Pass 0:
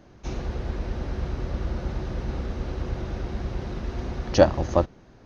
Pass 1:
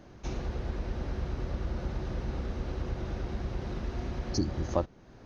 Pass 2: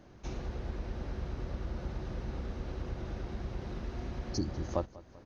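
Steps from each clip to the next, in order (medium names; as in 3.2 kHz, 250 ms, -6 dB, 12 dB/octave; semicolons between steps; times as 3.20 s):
spectral replace 4.01–4.60 s, 420–4100 Hz; compression 1.5:1, threshold -37 dBFS, peak gain reduction 8.5 dB
feedback delay 194 ms, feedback 54%, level -20 dB; trim -4 dB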